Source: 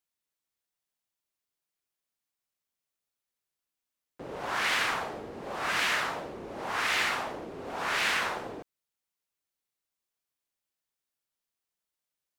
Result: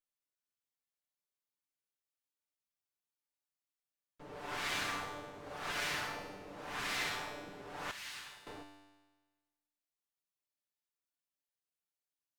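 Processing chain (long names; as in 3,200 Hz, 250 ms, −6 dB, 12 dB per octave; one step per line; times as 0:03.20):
lower of the sound and its delayed copy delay 6.8 ms
tuned comb filter 98 Hz, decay 1.3 s, harmonics all, mix 80%
0:07.91–0:08.47: guitar amp tone stack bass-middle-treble 5-5-5
level +4 dB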